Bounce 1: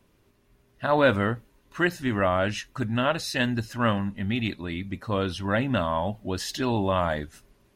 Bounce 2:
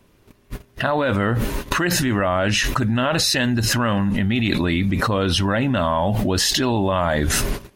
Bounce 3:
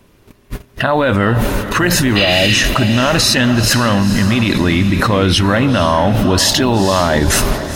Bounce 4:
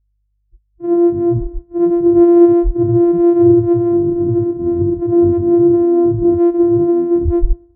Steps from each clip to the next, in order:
noise gate −58 dBFS, range −29 dB; envelope flattener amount 100%; level −3.5 dB
healed spectral selection 0:02.19–0:02.53, 870–5,000 Hz after; feedback delay with all-pass diffusion 475 ms, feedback 45%, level −10 dB; boost into a limiter +7.5 dB; level −1 dB
samples sorted by size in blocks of 128 samples; mains hum 50 Hz, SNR 15 dB; every bin expanded away from the loudest bin 4 to 1

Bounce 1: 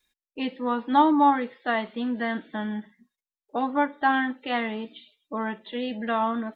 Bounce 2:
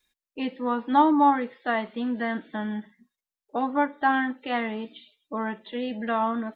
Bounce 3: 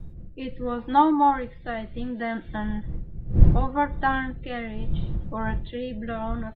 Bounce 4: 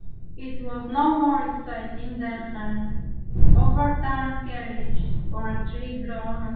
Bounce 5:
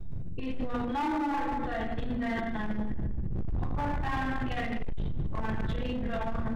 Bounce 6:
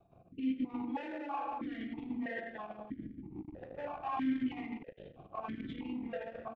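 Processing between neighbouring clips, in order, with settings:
dynamic equaliser 3,700 Hz, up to −4 dB, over −44 dBFS, Q 1.2
wind on the microphone 81 Hz −24 dBFS; comb filter 5.8 ms, depth 35%; rotating-speaker cabinet horn 0.7 Hz
rectangular room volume 440 cubic metres, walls mixed, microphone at 3.5 metres; level −10.5 dB
downward compressor 4 to 1, threshold −25 dBFS, peak gain reduction 16.5 dB; transient designer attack −5 dB, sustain +9 dB; hard clipping −26.5 dBFS, distortion −12 dB
far-end echo of a speakerphone 140 ms, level −25 dB; formant filter that steps through the vowels 3.1 Hz; level +5 dB

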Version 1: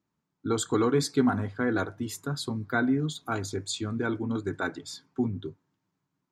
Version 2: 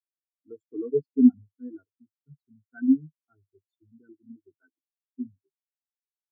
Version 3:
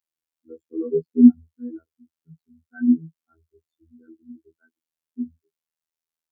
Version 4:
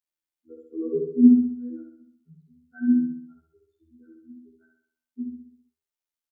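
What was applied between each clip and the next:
every bin expanded away from the loudest bin 4 to 1; level +4.5 dB
phases set to zero 81.1 Hz; level +6 dB
repeating echo 65 ms, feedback 51%, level −3 dB; level −4.5 dB

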